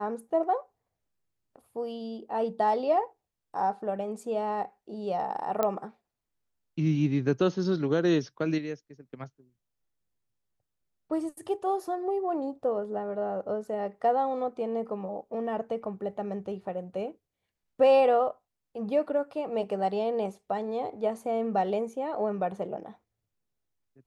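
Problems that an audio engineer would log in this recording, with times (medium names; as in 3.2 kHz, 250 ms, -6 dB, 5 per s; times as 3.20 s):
5.63 s: pop -13 dBFS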